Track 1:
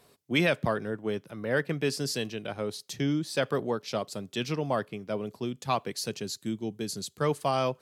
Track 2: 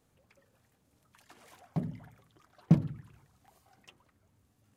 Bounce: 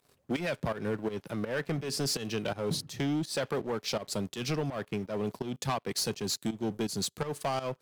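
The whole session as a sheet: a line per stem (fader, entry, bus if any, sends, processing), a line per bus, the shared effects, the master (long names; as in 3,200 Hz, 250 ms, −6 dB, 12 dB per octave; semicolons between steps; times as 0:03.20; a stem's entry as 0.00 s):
−4.5 dB, 0.00 s, no send, downward compressor 6 to 1, threshold −30 dBFS, peak gain reduction 10 dB; leveller curve on the samples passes 3
−4.0 dB, 0.00 s, no send, automatic ducking −9 dB, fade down 1.40 s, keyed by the first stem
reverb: not used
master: fake sidechain pumping 83 BPM, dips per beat 2, −14 dB, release 191 ms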